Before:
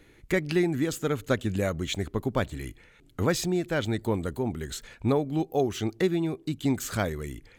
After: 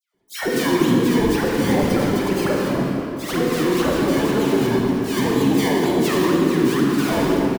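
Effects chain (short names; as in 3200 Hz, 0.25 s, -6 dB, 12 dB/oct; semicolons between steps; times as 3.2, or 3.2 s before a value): sine-wave speech; darkening echo 0.242 s, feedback 54%, low-pass 1600 Hz, level -17 dB; gate with hold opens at -46 dBFS; in parallel at -1 dB: negative-ratio compressor -34 dBFS, ratio -1; on the sum: harmoniser -12 st -9 dB, -5 st -6 dB, +7 st -12 dB; decimation with a swept rate 23×, swing 100% 2 Hz; dispersion lows, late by 0.147 s, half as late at 1400 Hz; limiter -16 dBFS, peak gain reduction 8.5 dB; low shelf 380 Hz +6 dB; reverb RT60 3.0 s, pre-delay 29 ms, DRR -2.5 dB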